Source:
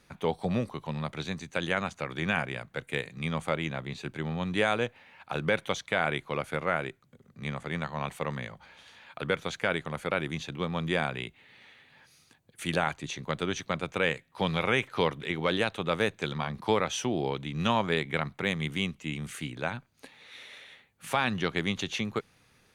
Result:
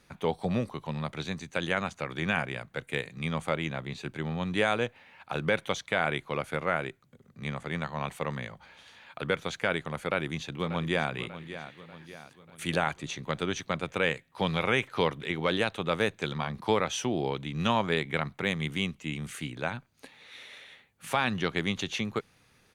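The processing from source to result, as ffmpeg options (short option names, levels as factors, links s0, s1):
-filter_complex "[0:a]asplit=2[s0][s1];[s1]afade=t=in:st=10:d=0.01,afade=t=out:st=11.11:d=0.01,aecho=0:1:590|1180|1770|2360|2950:0.237137|0.118569|0.0592843|0.0296422|0.0148211[s2];[s0][s2]amix=inputs=2:normalize=0"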